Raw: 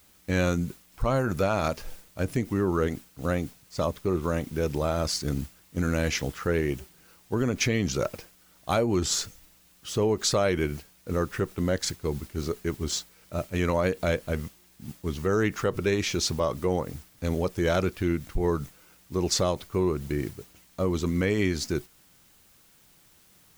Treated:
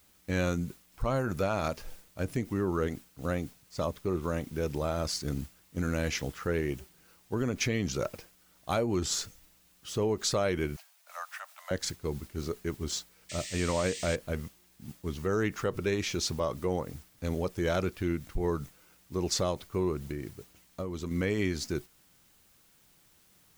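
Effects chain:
0:10.76–0:11.71: Butterworth high-pass 610 Hz 96 dB per octave
0:13.29–0:14.16: sound drawn into the spectrogram noise 1,700–8,900 Hz −37 dBFS
0:19.99–0:21.11: downward compressor, threshold −28 dBFS, peak gain reduction 7 dB
level −4.5 dB

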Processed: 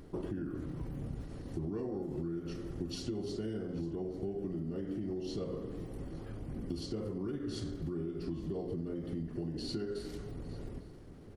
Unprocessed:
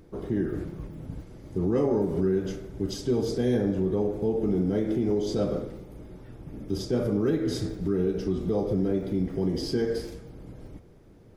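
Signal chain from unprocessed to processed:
mains-hum notches 50/100/150/200/250/300/350 Hz
downward compressor 8 to 1, threshold −37 dBFS, peak gain reduction 16 dB
on a send: single-tap delay 847 ms −20.5 dB
on the sum: pitch shifter −2 semitones
level +2 dB

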